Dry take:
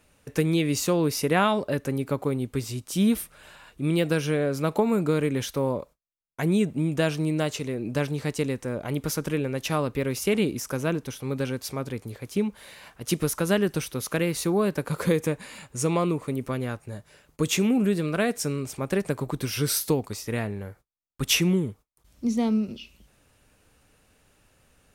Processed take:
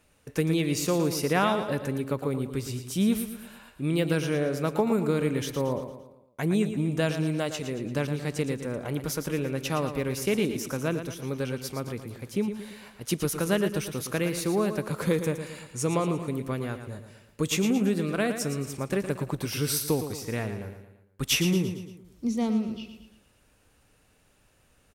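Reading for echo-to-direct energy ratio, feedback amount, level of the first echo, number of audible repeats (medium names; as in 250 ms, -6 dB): -8.5 dB, 47%, -9.5 dB, 4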